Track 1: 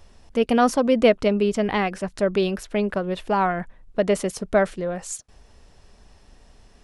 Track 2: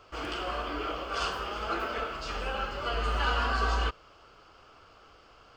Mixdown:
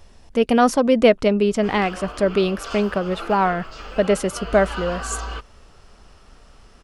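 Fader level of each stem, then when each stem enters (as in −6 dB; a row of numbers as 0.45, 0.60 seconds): +2.5, −2.0 decibels; 0.00, 1.50 seconds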